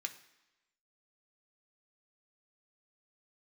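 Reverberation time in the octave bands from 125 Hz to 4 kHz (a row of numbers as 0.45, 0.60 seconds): 0.85, 0.95, 1.0, 1.0, 1.1, 1.0 seconds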